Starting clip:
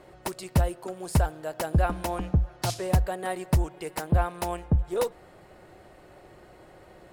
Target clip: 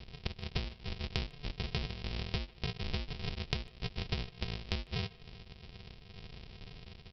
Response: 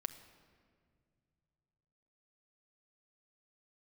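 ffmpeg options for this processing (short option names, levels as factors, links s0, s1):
-filter_complex "[0:a]aresample=11025,acrusher=samples=38:mix=1:aa=0.000001,aresample=44100,acompressor=threshold=0.0178:ratio=12,highshelf=f=2000:t=q:w=1.5:g=9,asplit=2[s0][s1];[s1]adelay=150,highpass=300,lowpass=3400,asoftclip=type=hard:threshold=0.0891,volume=0.0891[s2];[s0][s2]amix=inputs=2:normalize=0,volume=1.12"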